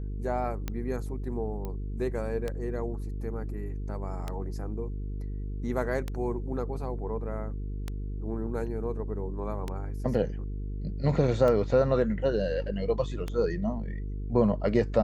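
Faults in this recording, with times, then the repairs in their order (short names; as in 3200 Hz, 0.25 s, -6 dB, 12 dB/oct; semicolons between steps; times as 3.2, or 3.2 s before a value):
buzz 50 Hz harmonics 9 -34 dBFS
tick 33 1/3 rpm -18 dBFS
1.65 pop -23 dBFS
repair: de-click; de-hum 50 Hz, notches 9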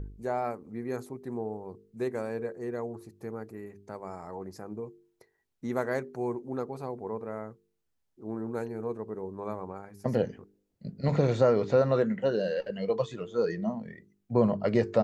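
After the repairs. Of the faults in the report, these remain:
none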